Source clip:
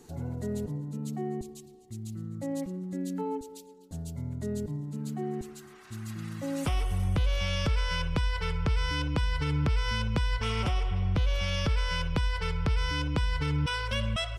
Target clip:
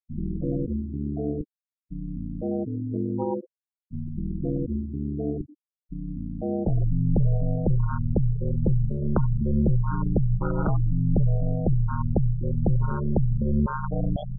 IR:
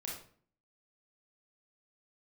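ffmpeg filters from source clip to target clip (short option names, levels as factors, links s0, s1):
-filter_complex "[0:a]asplit=2[s0][s1];[1:a]atrim=start_sample=2205[s2];[s1][s2]afir=irnorm=-1:irlink=0,volume=0.106[s3];[s0][s3]amix=inputs=2:normalize=0,aeval=exprs='val(0)*sin(2*PI*71*n/s)':c=same,afwtdn=0.0224,afftfilt=real='re*gte(hypot(re,im),0.02)':imag='im*gte(hypot(re,im),0.02)':win_size=1024:overlap=0.75,volume=2.66"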